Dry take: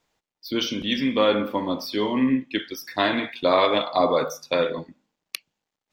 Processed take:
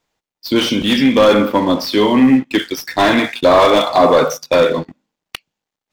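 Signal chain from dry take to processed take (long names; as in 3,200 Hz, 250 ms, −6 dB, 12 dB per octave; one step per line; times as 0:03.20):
leveller curve on the samples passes 2
slew-rate limiting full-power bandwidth 290 Hz
level +4.5 dB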